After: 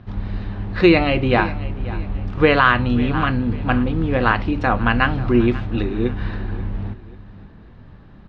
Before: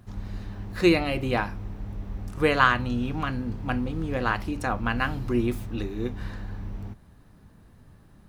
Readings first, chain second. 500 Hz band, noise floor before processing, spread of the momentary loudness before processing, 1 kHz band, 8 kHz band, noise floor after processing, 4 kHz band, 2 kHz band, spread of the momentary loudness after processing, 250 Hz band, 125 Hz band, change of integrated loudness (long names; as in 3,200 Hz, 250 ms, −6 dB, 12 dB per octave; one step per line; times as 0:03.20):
+8.0 dB, −54 dBFS, 16 LU, +7.5 dB, below −10 dB, −43 dBFS, +6.5 dB, +7.5 dB, 14 LU, +8.5 dB, +9.0 dB, +8.0 dB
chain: low-pass filter 3,900 Hz 24 dB per octave
on a send: repeating echo 539 ms, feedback 35%, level −17.5 dB
on the sum: boost into a limiter +10 dB
level −1 dB